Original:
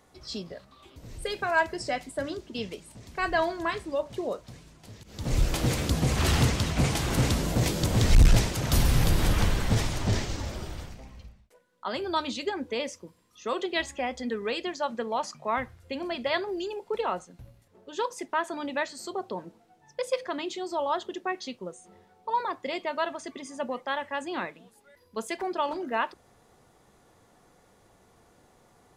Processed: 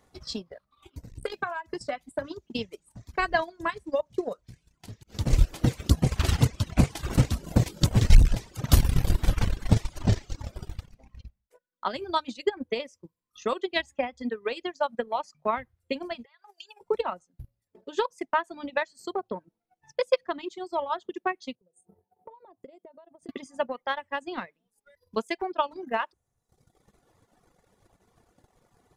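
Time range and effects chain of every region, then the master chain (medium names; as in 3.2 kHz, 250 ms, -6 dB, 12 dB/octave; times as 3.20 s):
1.05–2.46 s: dynamic bell 1.1 kHz, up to +8 dB, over -39 dBFS, Q 1.7 + compression, threshold -27 dBFS + transformer saturation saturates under 590 Hz
16.25–16.81 s: Bessel high-pass 1 kHz, order 6 + compression 8:1, threshold -43 dBFS
21.55–23.29 s: high-pass 93 Hz + high-order bell 2.7 kHz -16 dB 2.9 oct + compression 12:1, threshold -46 dBFS
whole clip: reverb removal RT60 1.1 s; bass shelf 150 Hz +4 dB; transient shaper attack +10 dB, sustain -10 dB; trim -4 dB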